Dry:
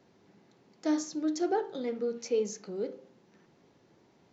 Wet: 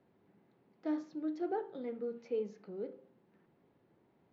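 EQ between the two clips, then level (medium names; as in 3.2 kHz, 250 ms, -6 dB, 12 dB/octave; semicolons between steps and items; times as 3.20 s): distance through air 370 m; -6.0 dB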